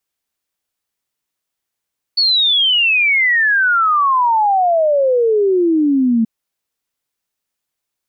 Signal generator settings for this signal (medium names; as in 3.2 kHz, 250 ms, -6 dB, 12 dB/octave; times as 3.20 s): log sweep 4.5 kHz -> 220 Hz 4.08 s -10.5 dBFS